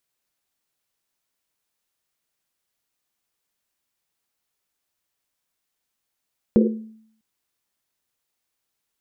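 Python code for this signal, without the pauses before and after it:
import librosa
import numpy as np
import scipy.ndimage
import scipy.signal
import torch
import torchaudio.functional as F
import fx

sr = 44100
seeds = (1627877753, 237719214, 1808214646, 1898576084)

y = fx.risset_drum(sr, seeds[0], length_s=0.65, hz=220.0, decay_s=0.68, noise_hz=420.0, noise_width_hz=140.0, noise_pct=40)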